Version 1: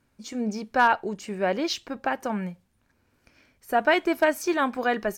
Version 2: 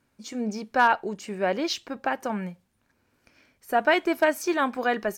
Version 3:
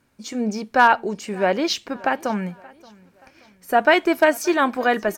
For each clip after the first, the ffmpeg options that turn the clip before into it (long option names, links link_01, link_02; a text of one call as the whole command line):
ffmpeg -i in.wav -af "lowshelf=frequency=92:gain=-8" out.wav
ffmpeg -i in.wav -af "aecho=1:1:577|1154|1731:0.0631|0.0278|0.0122,volume=5.5dB" out.wav